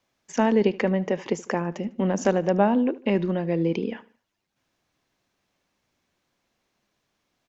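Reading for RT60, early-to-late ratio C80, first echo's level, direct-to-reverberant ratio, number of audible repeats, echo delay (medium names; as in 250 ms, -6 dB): no reverb, no reverb, -19.5 dB, no reverb, 2, 75 ms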